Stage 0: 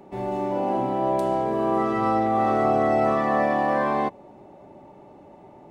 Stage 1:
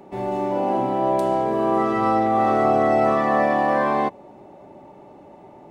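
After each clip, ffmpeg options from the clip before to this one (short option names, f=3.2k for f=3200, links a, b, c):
-af "lowshelf=f=140:g=-4,volume=3dB"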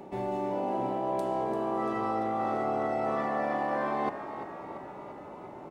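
-filter_complex "[0:a]areverse,acompressor=threshold=-29dB:ratio=5,areverse,asplit=8[a][b][c][d][e][f][g][h];[b]adelay=342,afreqshift=54,volume=-11.5dB[i];[c]adelay=684,afreqshift=108,volume=-15.7dB[j];[d]adelay=1026,afreqshift=162,volume=-19.8dB[k];[e]adelay=1368,afreqshift=216,volume=-24dB[l];[f]adelay=1710,afreqshift=270,volume=-28.1dB[m];[g]adelay=2052,afreqshift=324,volume=-32.3dB[n];[h]adelay=2394,afreqshift=378,volume=-36.4dB[o];[a][i][j][k][l][m][n][o]amix=inputs=8:normalize=0"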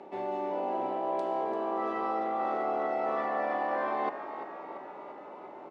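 -af "highpass=340,lowpass=4.2k"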